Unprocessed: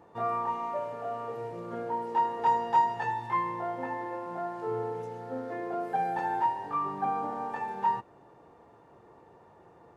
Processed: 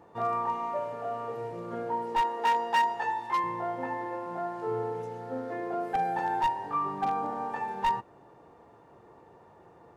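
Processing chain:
wavefolder on the positive side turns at −22.5 dBFS
0:02.21–0:03.44: high-pass filter 270 Hz 12 dB per octave
level +1 dB

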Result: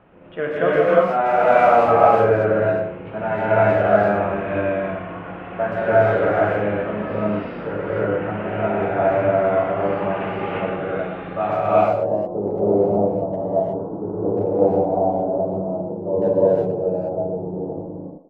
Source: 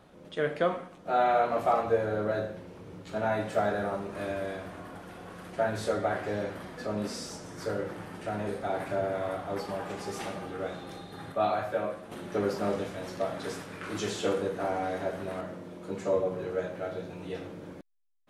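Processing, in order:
elliptic low-pass filter 2,800 Hz, stop band 60 dB, from 0:11.55 880 Hz
far-end echo of a speakerphone 120 ms, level −10 dB
reverb whose tail is shaped and stops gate 390 ms rising, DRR −7.5 dB
level +4 dB

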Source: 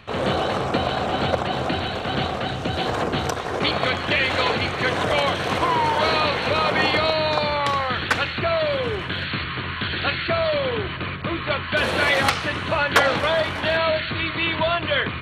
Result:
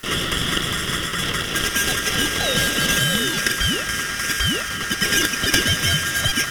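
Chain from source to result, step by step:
stylus tracing distortion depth 0.32 ms
phaser with its sweep stopped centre 1,700 Hz, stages 8
in parallel at −7.5 dB: bit-depth reduction 6 bits, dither triangular
on the sum: feedback delay with all-pass diffusion 651 ms, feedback 68%, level −11 dB
ring modulation 690 Hz
wrong playback speed 33 rpm record played at 78 rpm
level +2.5 dB

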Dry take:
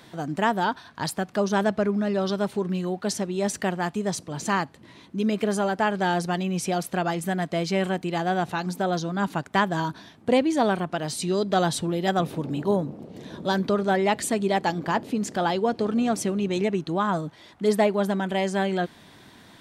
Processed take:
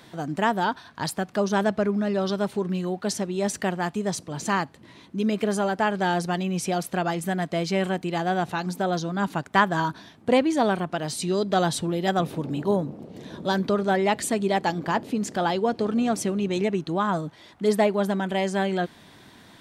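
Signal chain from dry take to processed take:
0:09.42–0:10.54: dynamic equaliser 1,300 Hz, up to +5 dB, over −34 dBFS, Q 1.2

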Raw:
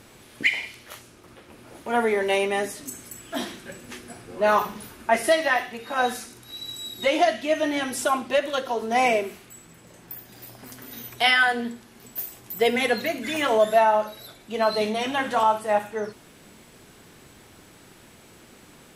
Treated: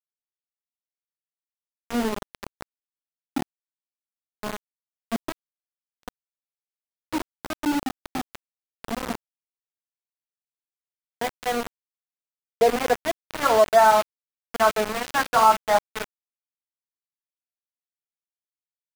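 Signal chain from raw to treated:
low-pass filter sweep 260 Hz → 1,400 Hz, 0:09.74–0:13.70
centre clipping without the shift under −21.5 dBFS
frozen spectrum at 0:05.52, 0.54 s

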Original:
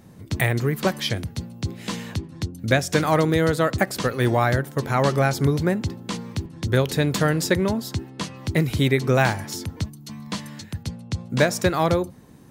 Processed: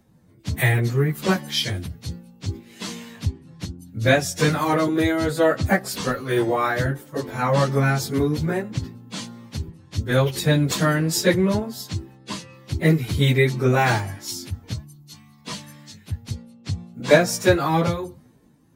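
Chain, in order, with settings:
time stretch by phase vocoder 1.5×
multiband upward and downward expander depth 40%
level +3 dB

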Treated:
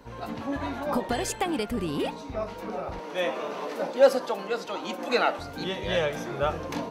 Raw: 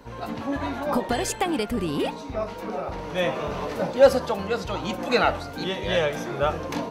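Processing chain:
0:02.99–0:05.39: high-pass filter 230 Hz 24 dB per octave
level −3 dB

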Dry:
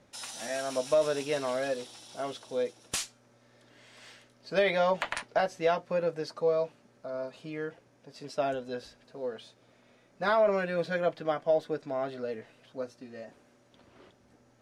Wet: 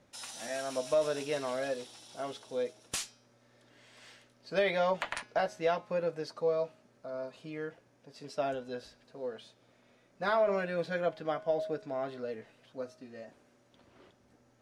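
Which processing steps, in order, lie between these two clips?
hum removal 210.5 Hz, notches 29
level −3 dB

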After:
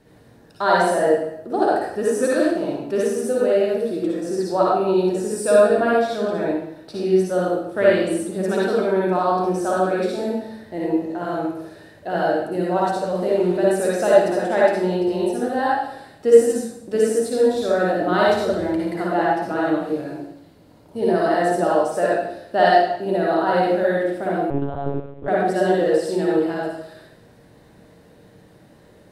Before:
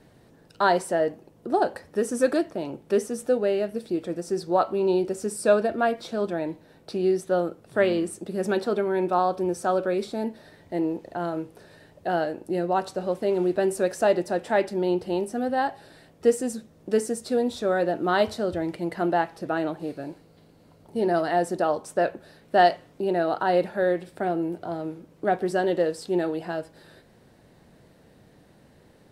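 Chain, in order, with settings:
convolution reverb RT60 0.80 s, pre-delay 48 ms, DRR −6 dB
0:24.50–0:25.28: one-pitch LPC vocoder at 8 kHz 140 Hz
level −1.5 dB

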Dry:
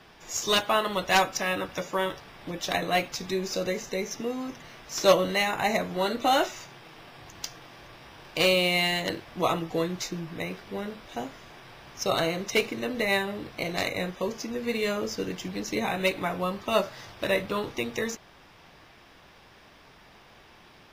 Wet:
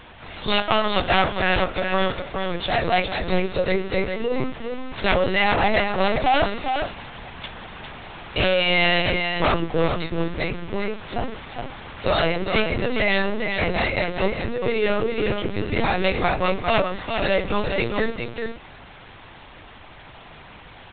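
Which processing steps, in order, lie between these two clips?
sine wavefolder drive 13 dB, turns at −6.5 dBFS
mains-hum notches 60/120/180/240/300/360/420/480/540/600 Hz
on a send: single-tap delay 408 ms −5.5 dB
on the sum: linear-prediction vocoder at 8 kHz pitch kept
level −7.5 dB

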